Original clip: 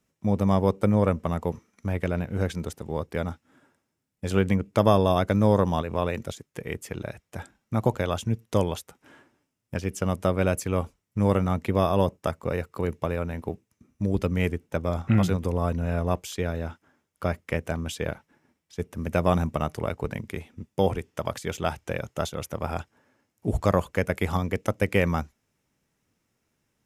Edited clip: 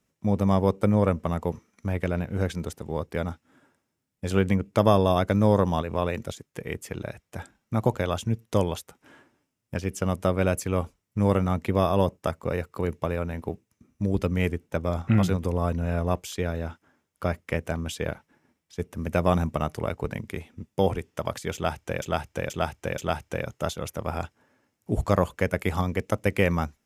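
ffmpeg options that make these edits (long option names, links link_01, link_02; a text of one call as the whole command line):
ffmpeg -i in.wav -filter_complex "[0:a]asplit=4[link_01][link_02][link_03][link_04];[link_01]atrim=end=22.022[link_05];[link_02]atrim=start=21.538:end=22.022[link_06];[link_03]atrim=start=21.538:end=22.022[link_07];[link_04]atrim=start=21.538[link_08];[link_05][link_06]acrossfade=duration=0.004:curve1=hsin:curve2=hsin[link_09];[link_09][link_07]acrossfade=duration=0.004:curve1=hsin:curve2=hsin[link_10];[link_10][link_08]acrossfade=duration=0.004:curve1=hsin:curve2=hsin" out.wav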